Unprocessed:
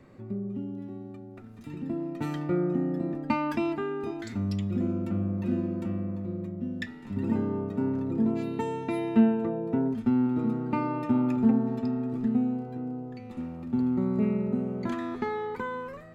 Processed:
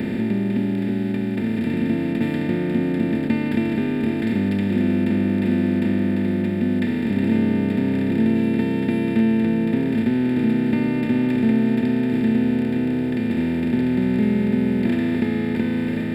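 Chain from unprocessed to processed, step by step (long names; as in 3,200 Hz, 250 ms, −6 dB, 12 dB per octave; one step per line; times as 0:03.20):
compressor on every frequency bin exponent 0.2
phaser with its sweep stopped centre 2,600 Hz, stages 4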